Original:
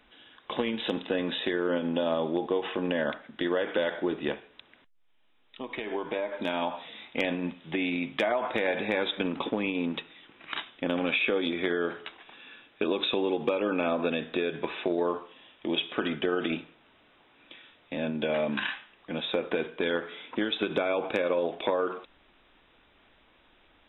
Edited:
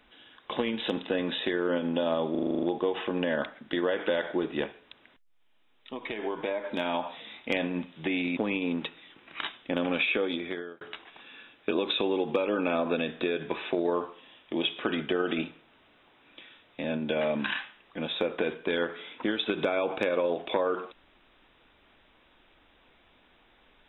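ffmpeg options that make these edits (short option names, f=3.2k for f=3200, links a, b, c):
-filter_complex "[0:a]asplit=11[a][b][c][d][e][f][g][h][i][j][k];[a]atrim=end=2.352[l];[b]atrim=start=2.308:end=2.352[m];[c]atrim=start=2.308:end=2.352[n];[d]atrim=start=2.308:end=2.352[o];[e]atrim=start=2.308:end=2.352[p];[f]atrim=start=2.308:end=2.352[q];[g]atrim=start=2.308:end=2.352[r];[h]atrim=start=2.308:end=2.352[s];[i]atrim=start=2.308:end=8.052[t];[j]atrim=start=9.498:end=11.94,asetpts=PTS-STARTPTS,afade=t=out:st=1.562:d=0.88:c=qsin[u];[k]atrim=start=11.94,asetpts=PTS-STARTPTS,afade=t=in:d=0.004:c=hsin[v];[l][m]acrossfade=d=0.004:c1=hsin:c2=hsin[w];[w][n]acrossfade=d=0.004:c1=hsin:c2=hsin[x];[x][o]acrossfade=d=0.004:c1=hsin:c2=hsin[y];[y][p]acrossfade=d=0.004:c1=hsin:c2=hsin[z];[z][q]acrossfade=d=0.004:c1=hsin:c2=hsin[aa];[aa][r]acrossfade=d=0.004:c1=hsin:c2=hsin[ab];[ab][s]acrossfade=d=0.004:c1=hsin:c2=hsin[ac];[ac][t]acrossfade=d=0.004:c1=hsin:c2=hsin[ad];[u][v]concat=n=2:v=0:a=1[ae];[ad][ae]acrossfade=d=0.004:c1=hsin:c2=hsin"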